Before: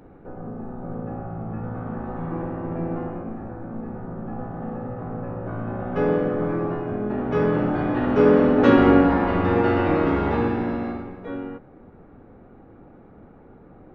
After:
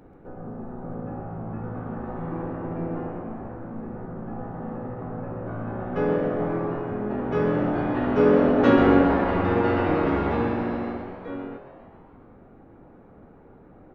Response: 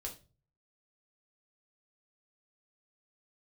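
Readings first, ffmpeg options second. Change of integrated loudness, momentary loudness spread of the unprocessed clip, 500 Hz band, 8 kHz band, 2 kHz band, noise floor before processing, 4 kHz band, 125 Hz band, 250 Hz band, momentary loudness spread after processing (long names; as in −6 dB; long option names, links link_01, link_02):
−2.0 dB, 18 LU, −2.0 dB, can't be measured, −1.5 dB, −48 dBFS, −2.0 dB, −2.5 dB, −2.5 dB, 18 LU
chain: -filter_complex "[0:a]asplit=8[link_01][link_02][link_03][link_04][link_05][link_06][link_07][link_08];[link_02]adelay=134,afreqshift=130,volume=-12dB[link_09];[link_03]adelay=268,afreqshift=260,volume=-16.4dB[link_10];[link_04]adelay=402,afreqshift=390,volume=-20.9dB[link_11];[link_05]adelay=536,afreqshift=520,volume=-25.3dB[link_12];[link_06]adelay=670,afreqshift=650,volume=-29.7dB[link_13];[link_07]adelay=804,afreqshift=780,volume=-34.2dB[link_14];[link_08]adelay=938,afreqshift=910,volume=-38.6dB[link_15];[link_01][link_09][link_10][link_11][link_12][link_13][link_14][link_15]amix=inputs=8:normalize=0,volume=-2.5dB"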